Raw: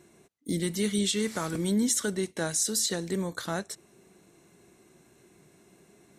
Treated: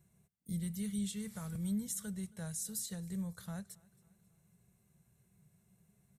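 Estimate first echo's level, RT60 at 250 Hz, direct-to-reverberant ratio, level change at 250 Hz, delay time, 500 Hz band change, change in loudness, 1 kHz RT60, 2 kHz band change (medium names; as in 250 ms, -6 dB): -24.0 dB, no reverb, no reverb, -9.0 dB, 272 ms, -21.5 dB, -11.5 dB, no reverb, -18.5 dB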